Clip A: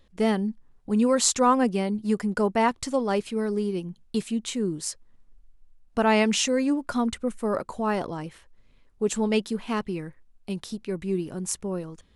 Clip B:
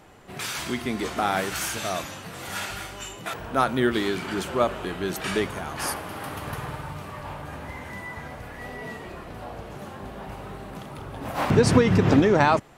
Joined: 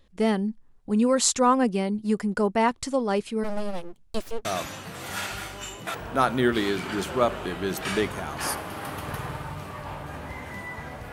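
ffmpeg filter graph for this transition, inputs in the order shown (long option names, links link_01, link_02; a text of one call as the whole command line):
ffmpeg -i cue0.wav -i cue1.wav -filter_complex "[0:a]asplit=3[link_01][link_02][link_03];[link_01]afade=type=out:start_time=3.43:duration=0.02[link_04];[link_02]aeval=exprs='abs(val(0))':channel_layout=same,afade=type=in:start_time=3.43:duration=0.02,afade=type=out:start_time=4.45:duration=0.02[link_05];[link_03]afade=type=in:start_time=4.45:duration=0.02[link_06];[link_04][link_05][link_06]amix=inputs=3:normalize=0,apad=whole_dur=11.12,atrim=end=11.12,atrim=end=4.452[link_07];[1:a]atrim=start=1.838:end=8.51[link_08];[link_07][link_08]acrossfade=duration=0.004:curve1=hsin:curve2=hsin" out.wav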